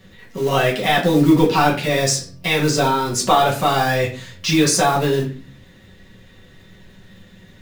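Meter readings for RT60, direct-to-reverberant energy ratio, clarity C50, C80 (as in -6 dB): 0.40 s, -4.0 dB, 9.5 dB, 14.0 dB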